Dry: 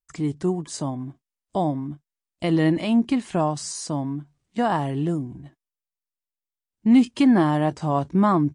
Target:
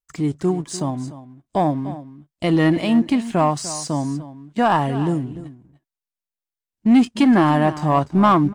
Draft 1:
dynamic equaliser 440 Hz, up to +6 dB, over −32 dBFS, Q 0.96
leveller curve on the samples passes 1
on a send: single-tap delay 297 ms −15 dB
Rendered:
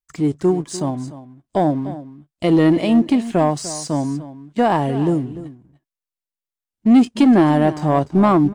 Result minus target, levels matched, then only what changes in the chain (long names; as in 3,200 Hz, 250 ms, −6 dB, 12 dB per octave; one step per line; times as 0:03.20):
1,000 Hz band −3.0 dB
change: dynamic equaliser 1,300 Hz, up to +6 dB, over −32 dBFS, Q 0.96